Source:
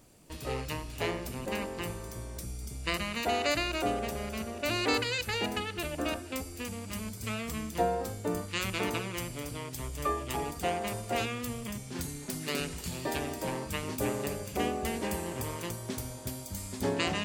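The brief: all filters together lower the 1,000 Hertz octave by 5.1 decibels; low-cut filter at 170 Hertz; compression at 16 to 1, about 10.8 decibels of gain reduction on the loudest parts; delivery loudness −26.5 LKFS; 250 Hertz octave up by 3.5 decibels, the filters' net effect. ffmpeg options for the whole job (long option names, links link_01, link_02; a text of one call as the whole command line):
ffmpeg -i in.wav -af "highpass=170,equalizer=frequency=250:width_type=o:gain=6,equalizer=frequency=1000:width_type=o:gain=-8.5,acompressor=threshold=-35dB:ratio=16,volume=13.5dB" out.wav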